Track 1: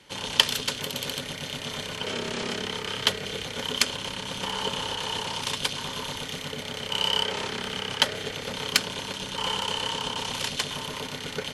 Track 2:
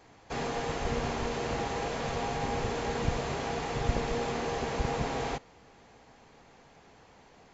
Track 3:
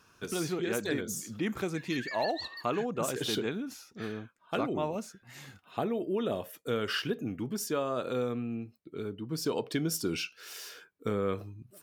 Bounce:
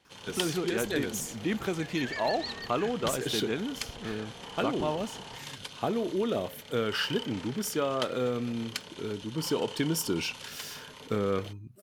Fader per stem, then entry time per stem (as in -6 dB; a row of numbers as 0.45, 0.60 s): -14.0, -17.0, +2.0 dB; 0.00, 0.00, 0.05 s